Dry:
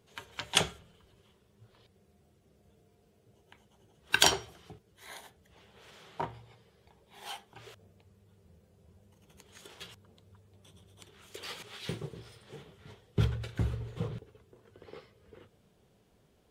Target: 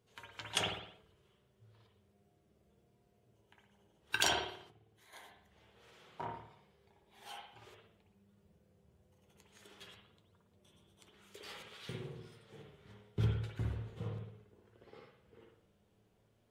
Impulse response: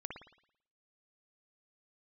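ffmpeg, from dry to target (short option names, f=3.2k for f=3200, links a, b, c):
-filter_complex "[1:a]atrim=start_sample=2205,afade=t=out:st=0.44:d=0.01,atrim=end_sample=19845[a];[0:a][a]afir=irnorm=-1:irlink=0,asplit=3[b][c][d];[b]afade=t=out:st=4.69:d=0.02[e];[c]acompressor=threshold=-60dB:ratio=3,afade=t=in:st=4.69:d=0.02,afade=t=out:st=5.12:d=0.02[f];[d]afade=t=in:st=5.12:d=0.02[g];[e][f][g]amix=inputs=3:normalize=0,flanger=delay=8.2:depth=1.6:regen=60:speed=0.66:shape=sinusoidal"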